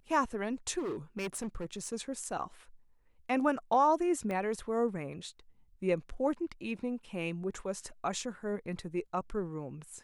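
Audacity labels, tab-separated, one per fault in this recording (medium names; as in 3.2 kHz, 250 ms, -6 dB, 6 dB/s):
0.780000	1.940000	clipped -33 dBFS
4.310000	4.310000	pop -25 dBFS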